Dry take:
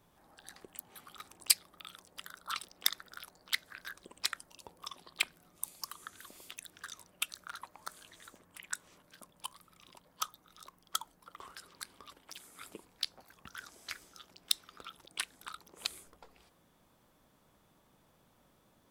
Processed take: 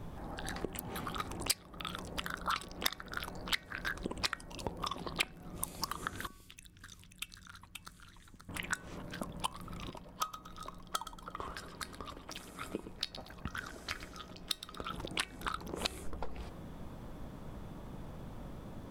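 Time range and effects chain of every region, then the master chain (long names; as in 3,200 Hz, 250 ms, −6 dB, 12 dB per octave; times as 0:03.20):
0:06.27–0:08.49: guitar amp tone stack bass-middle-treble 6-0-2 + single-tap delay 531 ms −6.5 dB
0:09.90–0:14.90: tuned comb filter 630 Hz, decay 0.17 s + repeating echo 117 ms, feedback 26%, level −14 dB
whole clip: spectral tilt −3 dB per octave; downward compressor 3 to 1, threshold −50 dBFS; hum removal 376.5 Hz, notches 7; level +15.5 dB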